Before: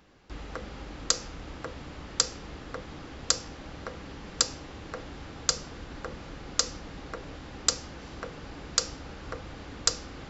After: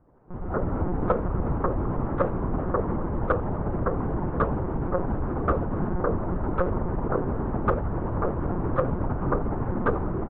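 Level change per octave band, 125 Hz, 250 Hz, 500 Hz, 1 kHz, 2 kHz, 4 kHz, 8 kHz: +16.5 dB, +15.5 dB, +14.5 dB, +12.0 dB, +2.5 dB, under -30 dB, n/a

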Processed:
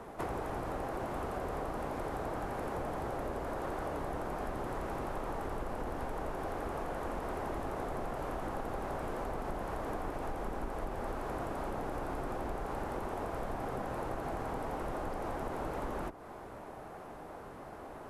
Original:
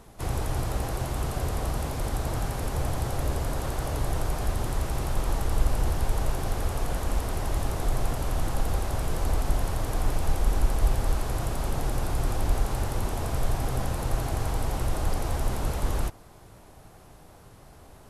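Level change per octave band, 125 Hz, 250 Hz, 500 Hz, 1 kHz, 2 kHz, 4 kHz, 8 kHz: -15.5, -5.0, -2.5, -2.5, -5.5, -14.5, -18.0 dB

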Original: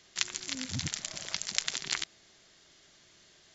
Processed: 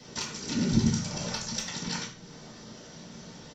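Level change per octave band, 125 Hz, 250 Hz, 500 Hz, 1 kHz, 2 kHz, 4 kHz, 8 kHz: +12.5 dB, +16.5 dB, +12.5 dB, +6.5 dB, -1.5 dB, -1.0 dB, n/a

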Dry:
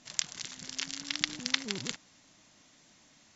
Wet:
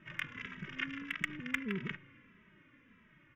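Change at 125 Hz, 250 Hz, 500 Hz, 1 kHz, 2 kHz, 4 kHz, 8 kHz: +3.0 dB, +2.0 dB, -1.0 dB, -1.5 dB, +1.0 dB, -14.5 dB, n/a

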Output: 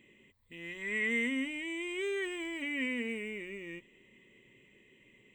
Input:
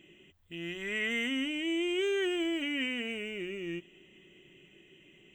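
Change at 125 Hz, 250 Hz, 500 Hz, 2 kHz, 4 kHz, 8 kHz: -5.5, -4.0, -5.0, 0.0, -8.5, -2.0 dB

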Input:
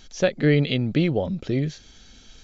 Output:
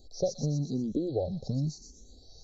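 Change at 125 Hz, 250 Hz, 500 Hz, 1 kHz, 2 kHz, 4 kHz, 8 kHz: -8.5 dB, -9.0 dB, -9.0 dB, -9.0 dB, under -40 dB, -14.0 dB, n/a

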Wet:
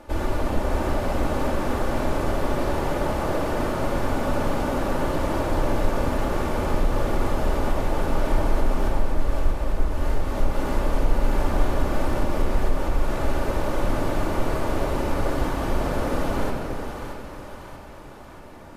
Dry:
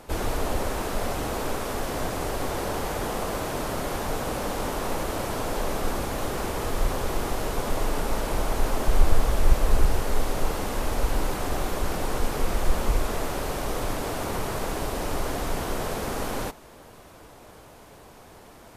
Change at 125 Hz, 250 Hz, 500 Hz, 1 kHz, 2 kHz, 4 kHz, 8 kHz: +4.0, +5.5, +3.5, +2.5, +1.5, -2.5, -6.5 dB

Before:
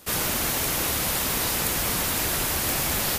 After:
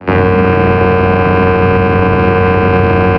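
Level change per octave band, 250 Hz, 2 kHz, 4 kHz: +21.0, +14.5, -2.5 dB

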